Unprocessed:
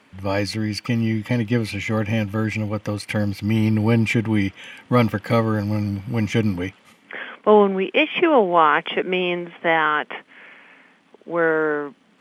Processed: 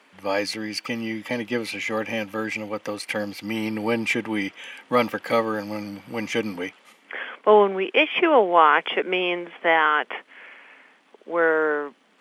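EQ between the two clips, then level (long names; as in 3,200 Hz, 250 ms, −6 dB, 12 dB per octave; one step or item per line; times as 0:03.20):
high-pass filter 350 Hz 12 dB per octave
0.0 dB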